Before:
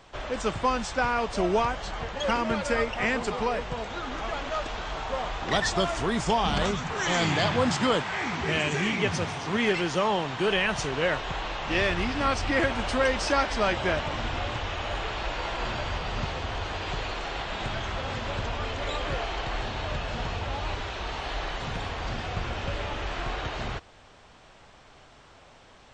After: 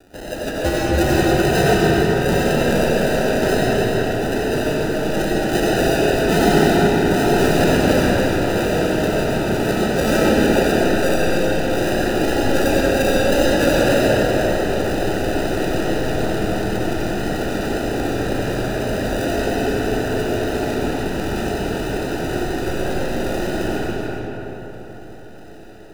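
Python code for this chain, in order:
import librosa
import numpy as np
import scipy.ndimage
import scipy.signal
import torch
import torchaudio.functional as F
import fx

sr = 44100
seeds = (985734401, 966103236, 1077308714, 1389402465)

y = scipy.signal.sosfilt(scipy.signal.butter(12, 3300.0, 'lowpass', fs=sr, output='sos'), x)
y = fx.peak_eq(y, sr, hz=760.0, db=14.0, octaves=0.94)
y = fx.sample_hold(y, sr, seeds[0], rate_hz=1100.0, jitter_pct=0)
y = fx.wow_flutter(y, sr, seeds[1], rate_hz=2.1, depth_cents=58.0)
y = y + 10.0 ** (-6.5 / 20.0) * np.pad(y, (int(288 * sr / 1000.0), 0))[:len(y)]
y = fx.rev_freeverb(y, sr, rt60_s=4.2, hf_ratio=0.5, predelay_ms=50, drr_db=-6.5)
y = y * 10.0 ** (-5.0 / 20.0)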